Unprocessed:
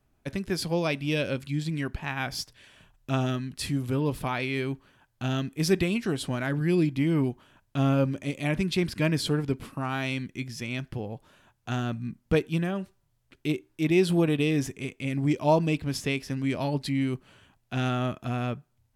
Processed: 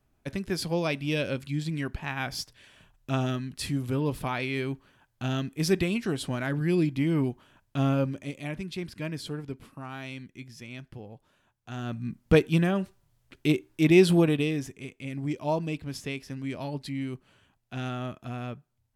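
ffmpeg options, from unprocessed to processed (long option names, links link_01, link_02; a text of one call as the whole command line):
ffmpeg -i in.wav -af "volume=12dB,afade=type=out:start_time=7.83:duration=0.76:silence=0.398107,afade=type=in:start_time=11.72:duration=0.6:silence=0.223872,afade=type=out:start_time=14.02:duration=0.59:silence=0.316228" out.wav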